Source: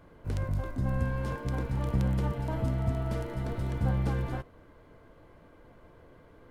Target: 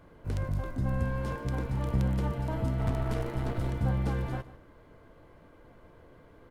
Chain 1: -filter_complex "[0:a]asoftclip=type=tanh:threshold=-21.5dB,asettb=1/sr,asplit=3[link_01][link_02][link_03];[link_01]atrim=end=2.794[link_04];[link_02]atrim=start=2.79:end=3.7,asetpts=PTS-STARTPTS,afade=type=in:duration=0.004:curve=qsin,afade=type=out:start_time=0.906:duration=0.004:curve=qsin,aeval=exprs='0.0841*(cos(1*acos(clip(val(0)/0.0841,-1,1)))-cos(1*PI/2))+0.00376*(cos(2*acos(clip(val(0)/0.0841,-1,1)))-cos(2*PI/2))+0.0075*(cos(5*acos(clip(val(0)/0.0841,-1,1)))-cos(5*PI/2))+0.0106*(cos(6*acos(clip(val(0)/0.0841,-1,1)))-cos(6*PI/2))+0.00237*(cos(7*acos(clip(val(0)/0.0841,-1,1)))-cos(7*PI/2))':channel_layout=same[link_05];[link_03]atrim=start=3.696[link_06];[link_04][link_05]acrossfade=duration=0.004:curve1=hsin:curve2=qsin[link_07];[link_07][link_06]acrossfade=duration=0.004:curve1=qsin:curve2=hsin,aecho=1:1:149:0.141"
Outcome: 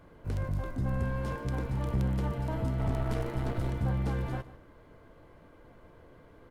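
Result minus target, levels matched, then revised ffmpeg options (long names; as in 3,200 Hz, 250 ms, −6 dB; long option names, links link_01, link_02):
soft clipping: distortion +16 dB
-filter_complex "[0:a]asoftclip=type=tanh:threshold=-12dB,asettb=1/sr,asplit=3[link_01][link_02][link_03];[link_01]atrim=end=2.794[link_04];[link_02]atrim=start=2.79:end=3.7,asetpts=PTS-STARTPTS,afade=type=in:duration=0.004:curve=qsin,afade=type=out:start_time=0.906:duration=0.004:curve=qsin,aeval=exprs='0.0841*(cos(1*acos(clip(val(0)/0.0841,-1,1)))-cos(1*PI/2))+0.00376*(cos(2*acos(clip(val(0)/0.0841,-1,1)))-cos(2*PI/2))+0.0075*(cos(5*acos(clip(val(0)/0.0841,-1,1)))-cos(5*PI/2))+0.0106*(cos(6*acos(clip(val(0)/0.0841,-1,1)))-cos(6*PI/2))+0.00237*(cos(7*acos(clip(val(0)/0.0841,-1,1)))-cos(7*PI/2))':channel_layout=same[link_05];[link_03]atrim=start=3.696[link_06];[link_04][link_05]acrossfade=duration=0.004:curve1=hsin:curve2=qsin[link_07];[link_07][link_06]acrossfade=duration=0.004:curve1=qsin:curve2=hsin,aecho=1:1:149:0.141"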